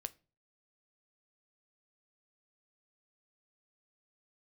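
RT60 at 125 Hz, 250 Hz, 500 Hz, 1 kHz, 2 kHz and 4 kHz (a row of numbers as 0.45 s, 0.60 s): 0.55 s, 0.45 s, 0.40 s, 0.30 s, 0.30 s, 0.25 s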